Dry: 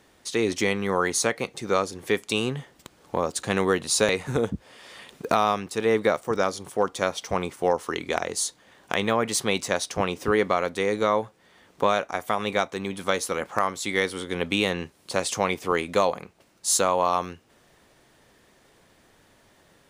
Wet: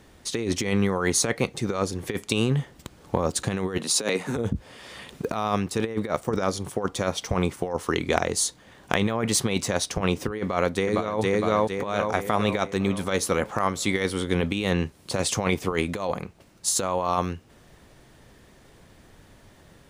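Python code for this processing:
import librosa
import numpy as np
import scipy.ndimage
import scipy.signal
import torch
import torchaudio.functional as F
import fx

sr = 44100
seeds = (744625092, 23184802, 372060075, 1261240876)

y = fx.highpass(x, sr, hz=190.0, slope=24, at=(3.77, 4.35), fade=0.02)
y = fx.echo_throw(y, sr, start_s=10.41, length_s=0.8, ms=460, feedback_pct=50, wet_db=-3.5)
y = fx.low_shelf(y, sr, hz=190.0, db=12.0)
y = fx.over_compress(y, sr, threshold_db=-23.0, ratio=-0.5)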